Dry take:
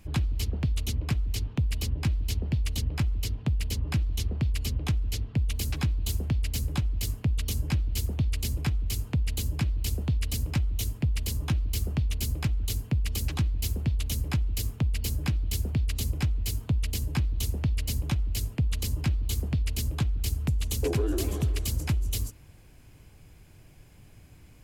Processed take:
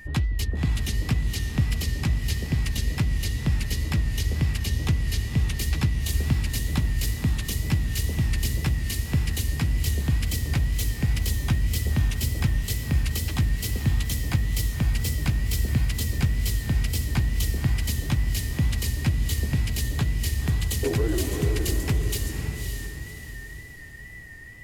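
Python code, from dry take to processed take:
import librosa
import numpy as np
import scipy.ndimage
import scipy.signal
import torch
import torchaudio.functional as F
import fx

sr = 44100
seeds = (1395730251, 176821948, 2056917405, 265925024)

y = x + 10.0 ** (-46.0 / 20.0) * np.sin(2.0 * np.pi * 1900.0 * np.arange(len(x)) / sr)
y = fx.wow_flutter(y, sr, seeds[0], rate_hz=2.1, depth_cents=76.0)
y = fx.echo_diffused(y, sr, ms=554, feedback_pct=41, wet_db=-5.0)
y = y * 10.0 ** (2.5 / 20.0)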